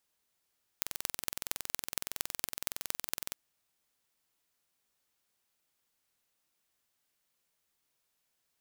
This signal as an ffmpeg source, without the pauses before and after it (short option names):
-f lavfi -i "aevalsrc='0.708*eq(mod(n,2042),0)*(0.5+0.5*eq(mod(n,10210),0))':d=2.52:s=44100"